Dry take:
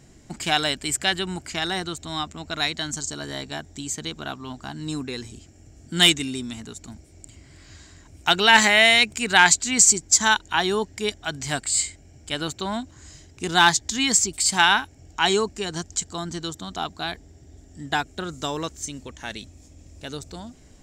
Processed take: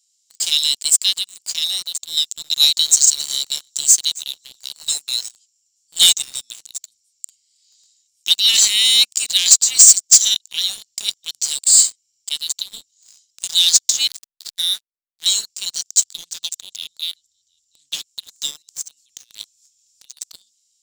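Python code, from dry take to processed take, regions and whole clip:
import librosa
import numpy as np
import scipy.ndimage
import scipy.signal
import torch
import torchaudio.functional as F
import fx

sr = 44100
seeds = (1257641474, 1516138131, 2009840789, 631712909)

y = fx.chain(x, sr, fx.high_shelf(hz=3700.0, db=9.5),
    fx.echo_feedback(ms=266, feedback_pct=18, wet_db=-21.0), at=(2.17, 5.29))
y = fx.chain(y, sr, fx.double_bandpass(hz=2700.0, octaves=0.89),
    fx.backlash(play_db=-25.5), at=(14.07, 15.26))
y = fx.chain(y, sr, fx.low_shelf(hz=410.0, db=5.5),
    fx.echo_single(ms=720, db=-22.5),
    fx.doppler_dist(depth_ms=0.21), at=(16.0, 18.05))
y = fx.chain(y, sr, fx.clip_hard(threshold_db=-23.5),
    fx.over_compress(threshold_db=-38.0, ratio=-0.5), at=(18.62, 20.17))
y = scipy.signal.sosfilt(scipy.signal.cheby2(4, 50, 1500.0, 'highpass', fs=sr, output='sos'), y)
y = fx.leveller(y, sr, passes=3)
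y = y * librosa.db_to_amplitude(2.5)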